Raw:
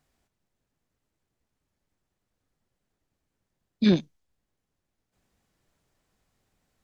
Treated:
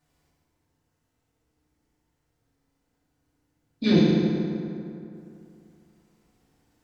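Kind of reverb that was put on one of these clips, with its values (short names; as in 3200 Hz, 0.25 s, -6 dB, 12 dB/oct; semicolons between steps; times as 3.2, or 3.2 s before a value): FDN reverb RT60 2.7 s, high-frequency decay 0.55×, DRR -9.5 dB; gain -4 dB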